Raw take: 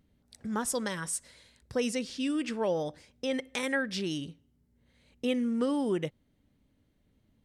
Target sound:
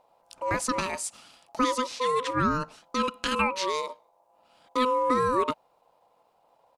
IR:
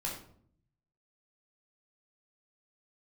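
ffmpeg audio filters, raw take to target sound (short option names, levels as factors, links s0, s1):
-filter_complex "[0:a]acrossover=split=8400[s0][s1];[s1]acompressor=threshold=0.00251:ratio=4:attack=1:release=60[s2];[s0][s2]amix=inputs=2:normalize=0,atempo=1.1,aeval=exprs='val(0)*sin(2*PI*760*n/s)':c=same,volume=2.37"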